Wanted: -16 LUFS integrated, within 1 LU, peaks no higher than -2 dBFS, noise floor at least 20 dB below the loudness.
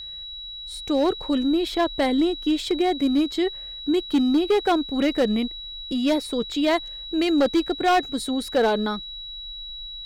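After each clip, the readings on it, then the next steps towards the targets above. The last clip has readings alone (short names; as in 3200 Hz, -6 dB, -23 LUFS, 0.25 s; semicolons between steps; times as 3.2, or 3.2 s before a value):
clipped 1.3%; flat tops at -14.5 dBFS; steady tone 3900 Hz; tone level -34 dBFS; loudness -23.0 LUFS; peak -14.5 dBFS; loudness target -16.0 LUFS
-> clip repair -14.5 dBFS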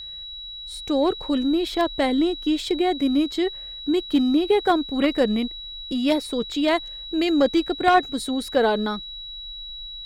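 clipped 0.0%; steady tone 3900 Hz; tone level -34 dBFS
-> notch 3900 Hz, Q 30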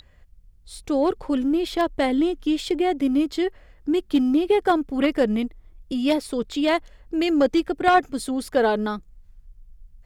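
steady tone none; loudness -22.5 LUFS; peak -5.0 dBFS; loudness target -16.0 LUFS
-> gain +6.5 dB; limiter -2 dBFS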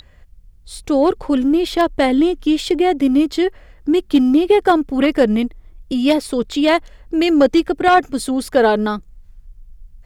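loudness -16.5 LUFS; peak -2.0 dBFS; noise floor -47 dBFS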